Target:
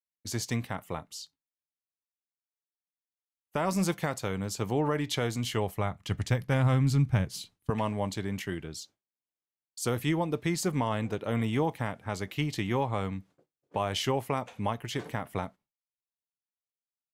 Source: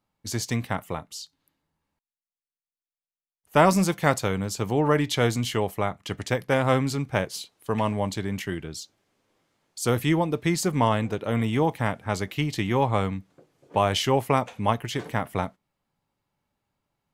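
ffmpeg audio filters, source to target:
ffmpeg -i in.wav -filter_complex "[0:a]agate=range=-33dB:threshold=-44dB:ratio=3:detection=peak,asettb=1/sr,asplit=3[link_01][link_02][link_03];[link_01]atrim=end=5.434[link_04];[link_02]atrim=start=5.43:end=7.7,asetpts=PTS-STARTPTS,afade=type=in:duration=0.004:curve=qsin,afade=type=out:start_time=2.266:duration=0.004:curve=qsin,asubboost=boost=11:cutoff=180[link_05];[link_03]atrim=start=7.696[link_06];[link_04][link_05]acrossfade=duration=0.004:curve1=hsin:curve2=qsin[link_07];[link_07][link_06]acrossfade=duration=0.004:curve1=qsin:curve2=hsin,alimiter=limit=-13dB:level=0:latency=1:release=225,volume=-4dB" out.wav

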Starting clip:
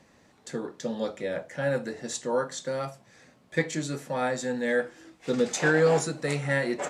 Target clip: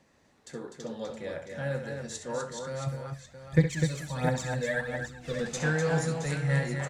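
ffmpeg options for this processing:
ffmpeg -i in.wav -filter_complex "[0:a]asubboost=boost=9:cutoff=110,asplit=3[link_01][link_02][link_03];[link_01]afade=type=out:start_time=2.86:duration=0.02[link_04];[link_02]aphaser=in_gain=1:out_gain=1:delay=2:decay=0.75:speed=1.4:type=triangular,afade=type=in:start_time=2.86:duration=0.02,afade=type=out:start_time=5.39:duration=0.02[link_05];[link_03]afade=type=in:start_time=5.39:duration=0.02[link_06];[link_04][link_05][link_06]amix=inputs=3:normalize=0,aecho=1:1:66|250|669:0.335|0.501|0.299,volume=-6dB" out.wav

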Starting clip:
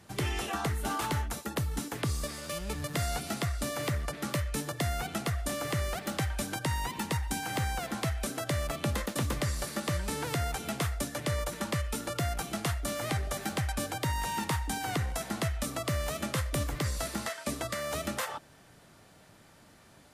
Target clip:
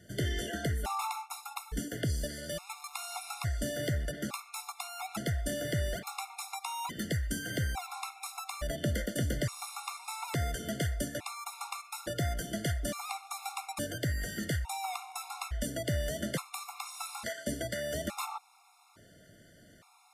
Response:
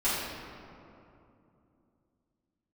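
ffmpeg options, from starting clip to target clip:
-af "aeval=exprs='0.0841*(cos(1*acos(clip(val(0)/0.0841,-1,1)))-cos(1*PI/2))+0.00133*(cos(5*acos(clip(val(0)/0.0841,-1,1)))-cos(5*PI/2))':channel_layout=same,afftfilt=real='re*gt(sin(2*PI*0.58*pts/sr)*(1-2*mod(floor(b*sr/1024/710),2)),0)':imag='im*gt(sin(2*PI*0.58*pts/sr)*(1-2*mod(floor(b*sr/1024/710),2)),0)':win_size=1024:overlap=0.75"

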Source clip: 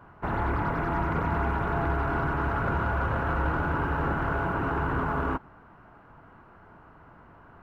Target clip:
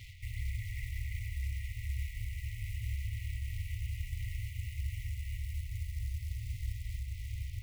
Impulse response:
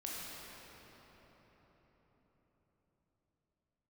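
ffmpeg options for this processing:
-filter_complex "[0:a]asplit=2[link_01][link_02];[1:a]atrim=start_sample=2205,asetrate=34839,aresample=44100,highshelf=frequency=2400:gain=4[link_03];[link_02][link_03]afir=irnorm=-1:irlink=0,volume=-3dB[link_04];[link_01][link_04]amix=inputs=2:normalize=0,aeval=exprs='sgn(val(0))*max(abs(val(0))-0.0015,0)':channel_layout=same,areverse,acompressor=threshold=-33dB:ratio=4,areverse,acrusher=bits=6:mode=log:mix=0:aa=0.000001,alimiter=level_in=10.5dB:limit=-24dB:level=0:latency=1:release=449,volume=-10.5dB,afftfilt=real='re*(1-between(b*sr/4096,120,1900))':imag='im*(1-between(b*sr/4096,120,1900))':win_size=4096:overlap=0.75,volume=11dB"

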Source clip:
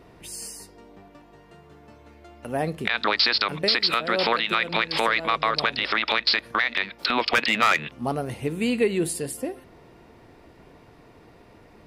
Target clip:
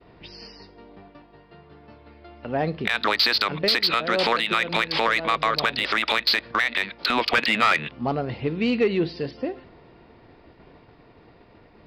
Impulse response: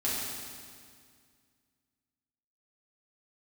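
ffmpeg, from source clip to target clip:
-af "aresample=11025,aresample=44100,aeval=exprs='0.355*(cos(1*acos(clip(val(0)/0.355,-1,1)))-cos(1*PI/2))+0.02*(cos(5*acos(clip(val(0)/0.355,-1,1)))-cos(5*PI/2))':channel_layout=same,agate=range=-33dB:threshold=-45dB:ratio=3:detection=peak"

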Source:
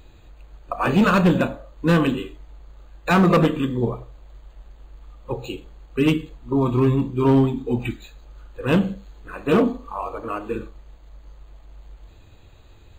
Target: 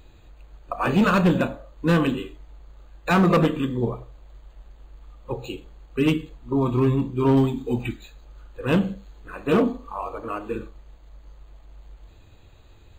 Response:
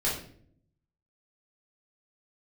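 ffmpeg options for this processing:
-filter_complex "[0:a]asettb=1/sr,asplit=3[link_01][link_02][link_03];[link_01]atrim=end=7.374[link_04];[link_02]atrim=start=7.37:end=7.82,asetpts=PTS-STARTPTS,afade=type=in:duration=0.004:curve=qsin,afade=type=out:start_time=0.446:duration=0.004:curve=qsin,highshelf=frequency=3900:gain=9[link_05];[link_03]atrim=start=7.816[link_06];[link_04][link_05]acrossfade=duration=0.004:curve1=hsin:curve2=qsin[link_07];[link_07][link_06]acrossfade=duration=0.004:curve1=qsin:curve2=hsin,volume=-2dB"

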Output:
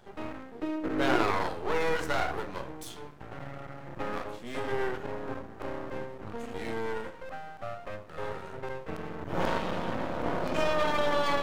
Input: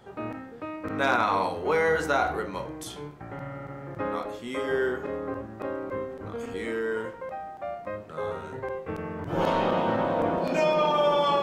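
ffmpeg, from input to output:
ffmpeg -i in.wav -filter_complex "[0:a]asettb=1/sr,asplit=3[link_01][link_02][link_03];[link_01]atrim=end=9.584[link_04];[link_02]atrim=start=9.58:end=10.26,asetpts=PTS-STARTPTS,afade=type=in:duration=0.004:curve=qsin,afade=type=out:start_time=0.676:duration=0.004:curve=qsin,equalizer=frequency=800:width=0.53:gain=-5[link_05];[link_03]atrim=start=10.256[link_06];[link_04][link_05]acrossfade=duration=0.004:curve1=hsin:curve2=qsin[link_07];[link_07][link_06]acrossfade=duration=0.004:curve1=qsin:curve2=hsin,aeval=exprs='max(val(0),0)':channel_layout=same,asettb=1/sr,asplit=3[link_08][link_09][link_10];[link_08]atrim=end=0.554[link_11];[link_09]atrim=start=0.55:end=1.31,asetpts=PTS-STARTPTS,afade=type=in:duration=0.004:curve=qsin,afade=type=out:start_time=0.756:duration=0.004:curve=qsin,equalizer=frequency=360:width=1.8:gain=12.5[link_12];[link_10]atrim=start=1.306[link_13];[link_11][link_12]acrossfade=duration=0.004:curve1=hsin:curve2=qsin[link_14];[link_14][link_13]acrossfade=duration=0.004:curve1=qsin:curve2=hsin" out.wav

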